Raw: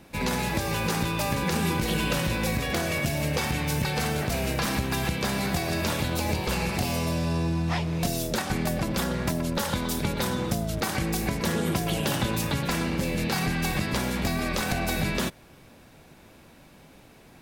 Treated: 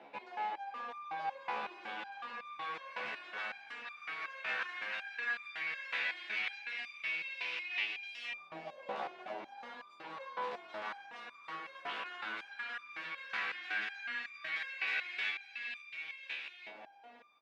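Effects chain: self-modulated delay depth 0.093 ms; three-band isolator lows -12 dB, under 190 Hz, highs -14 dB, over 3.7 kHz; reverse; compression, threshold -38 dBFS, peak gain reduction 12.5 dB; reverse; peak limiter -34.5 dBFS, peak gain reduction 7.5 dB; frequency weighting D; on a send: feedback delay 524 ms, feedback 51%, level -4 dB; on the sum: LFO band-pass saw up 0.12 Hz 700–2600 Hz; resonator arpeggio 5.4 Hz 71–1200 Hz; trim +17 dB

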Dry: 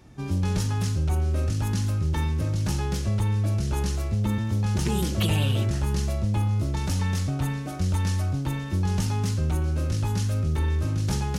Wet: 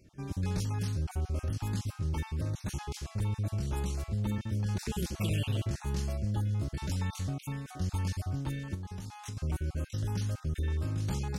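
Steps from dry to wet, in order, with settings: random holes in the spectrogram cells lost 23%; 8.74–9.37 s: compression 12:1, threshold -30 dBFS, peak gain reduction 10.5 dB; trim -7 dB

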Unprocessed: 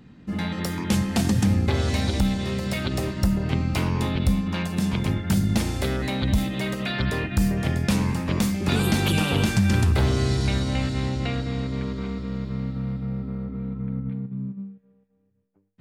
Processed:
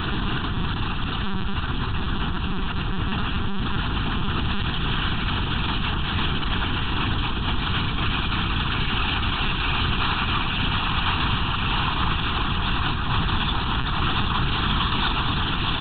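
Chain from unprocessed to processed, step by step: peaking EQ 2.2 kHz +7.5 dB 1.3 oct; Paulstretch 16×, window 0.50 s, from 3.16 s; fuzz box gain 42 dB, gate -43 dBFS; peak limiter -18 dBFS, peak gain reduction 7.5 dB; high-pass 82 Hz 12 dB/octave; feedback delay 582 ms, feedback 27%, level -20 dB; saturation -21.5 dBFS, distortion -11 dB; bass shelf 300 Hz -9 dB; LPC vocoder at 8 kHz pitch kept; static phaser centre 2.1 kHz, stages 6; trim +8.5 dB

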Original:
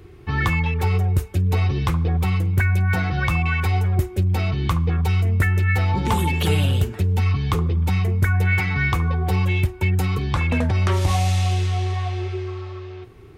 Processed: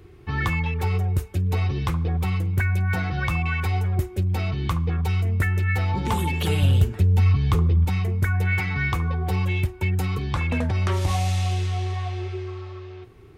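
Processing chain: 6.62–7.85 s: bass shelf 140 Hz +8 dB; trim -3.5 dB

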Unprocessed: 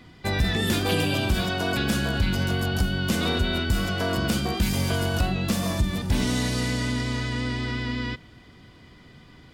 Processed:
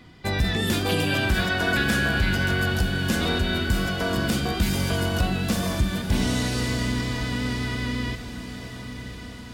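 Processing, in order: 1.07–2.74 s: peaking EQ 1.7 kHz +10 dB 0.62 oct; on a send: echo that smears into a reverb 1157 ms, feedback 56%, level -11 dB

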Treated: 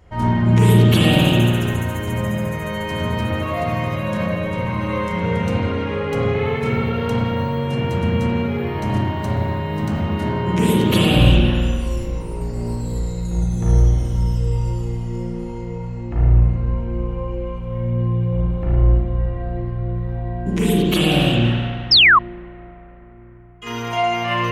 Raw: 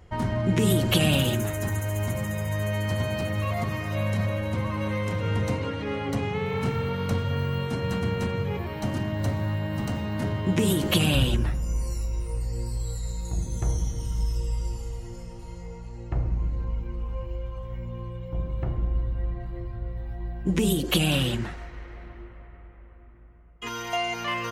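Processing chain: 11.96–12.94 s: comb filter that takes the minimum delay 5.2 ms; spring tank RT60 1.6 s, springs 34/51 ms, chirp 55 ms, DRR -6.5 dB; 21.91–22.19 s: painted sound fall 1–5.5 kHz -10 dBFS

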